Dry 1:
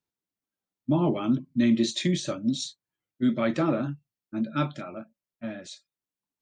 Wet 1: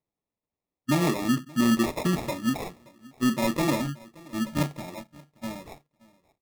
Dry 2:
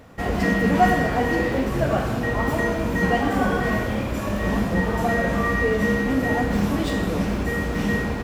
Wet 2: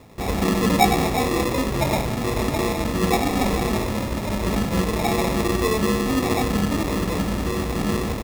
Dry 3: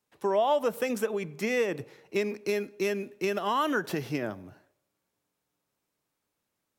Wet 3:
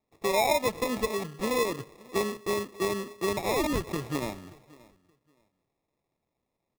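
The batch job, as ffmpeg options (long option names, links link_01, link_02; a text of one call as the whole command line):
ffmpeg -i in.wav -af "aecho=1:1:576|1152:0.0708|0.0149,acrusher=samples=29:mix=1:aa=0.000001" out.wav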